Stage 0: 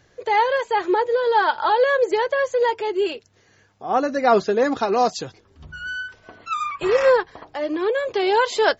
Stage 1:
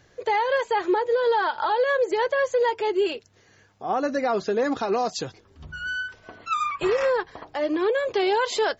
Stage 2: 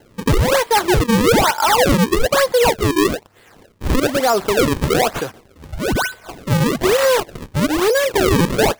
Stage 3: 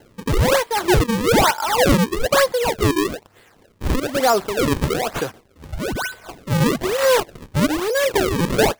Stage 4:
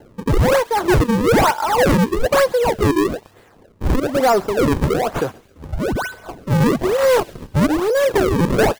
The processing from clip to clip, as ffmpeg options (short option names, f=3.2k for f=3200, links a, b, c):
-af "alimiter=limit=-15dB:level=0:latency=1:release=130"
-filter_complex "[0:a]asplit=2[a][b];[b]highpass=f=720:p=1,volume=8dB,asoftclip=type=tanh:threshold=-14.5dB[c];[a][c]amix=inputs=2:normalize=0,lowpass=f=3.9k:p=1,volume=-6dB,acrusher=samples=36:mix=1:aa=0.000001:lfo=1:lforange=57.6:lforate=1.1,volume=8dB"
-af "tremolo=f=2.1:d=0.58"
-filter_complex "[0:a]acrossover=split=1300[a][b];[a]aeval=exprs='0.473*sin(PI/2*1.78*val(0)/0.473)':c=same[c];[b]aecho=1:1:134|268|402|536:0.106|0.0487|0.0224|0.0103[d];[c][d]amix=inputs=2:normalize=0,volume=-4dB"